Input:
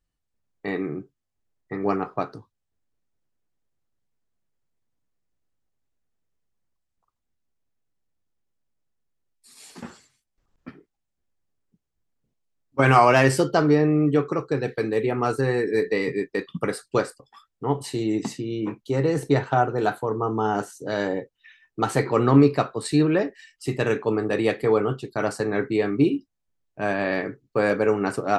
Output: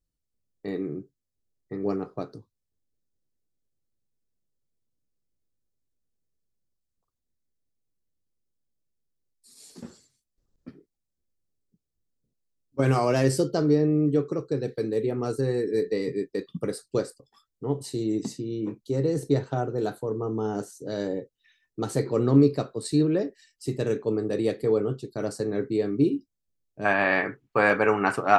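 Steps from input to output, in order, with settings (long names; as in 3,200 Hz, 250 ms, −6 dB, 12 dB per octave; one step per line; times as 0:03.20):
flat-topped bell 1,500 Hz −10.5 dB 2.4 octaves, from 0:26.84 +8 dB
level −2.5 dB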